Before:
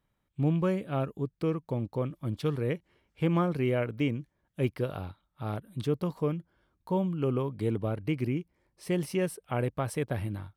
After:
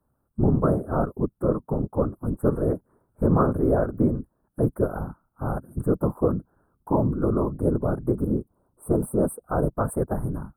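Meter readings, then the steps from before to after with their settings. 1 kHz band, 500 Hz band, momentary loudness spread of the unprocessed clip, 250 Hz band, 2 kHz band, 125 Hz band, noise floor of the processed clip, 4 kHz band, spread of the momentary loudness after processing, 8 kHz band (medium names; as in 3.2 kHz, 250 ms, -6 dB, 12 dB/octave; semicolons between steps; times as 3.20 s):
+7.0 dB, +7.0 dB, 10 LU, +6.5 dB, -3.0 dB, +4.5 dB, -73 dBFS, under -35 dB, 9 LU, no reading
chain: time-frequency box 8.12–9.75 s, 1.5–7.4 kHz -11 dB; Chebyshev band-stop 1.4–8.8 kHz, order 4; whisper effect; trim +7 dB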